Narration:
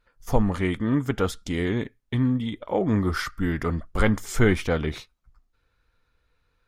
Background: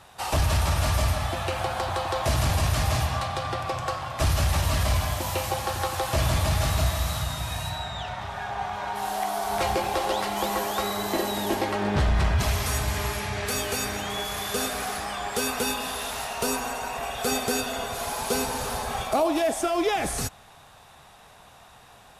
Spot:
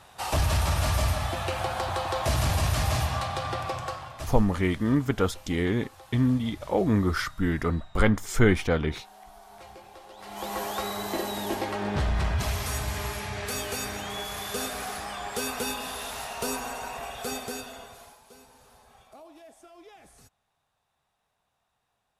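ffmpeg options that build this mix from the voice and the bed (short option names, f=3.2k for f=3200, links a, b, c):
-filter_complex "[0:a]adelay=4000,volume=-0.5dB[a];[1:a]volume=16.5dB,afade=t=out:st=3.63:d=0.76:silence=0.0944061,afade=t=in:st=10.17:d=0.46:silence=0.125893,afade=t=out:st=16.84:d=1.36:silence=0.0749894[b];[a][b]amix=inputs=2:normalize=0"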